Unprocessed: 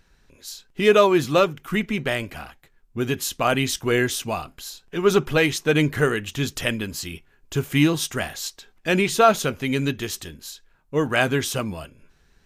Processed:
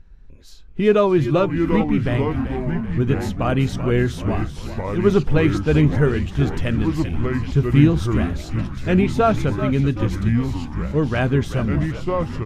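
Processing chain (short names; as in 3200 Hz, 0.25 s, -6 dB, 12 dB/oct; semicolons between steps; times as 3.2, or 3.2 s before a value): RIAA curve playback; frequency-shifting echo 0.384 s, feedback 53%, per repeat -73 Hz, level -10.5 dB; echoes that change speed 0.493 s, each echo -4 st, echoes 3, each echo -6 dB; gain -3 dB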